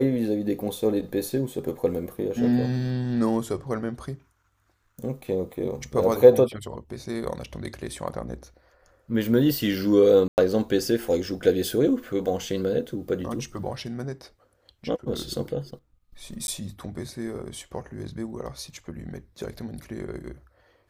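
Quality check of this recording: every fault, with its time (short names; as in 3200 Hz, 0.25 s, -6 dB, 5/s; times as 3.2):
10.28–10.38 gap 99 ms
16.47–16.48 gap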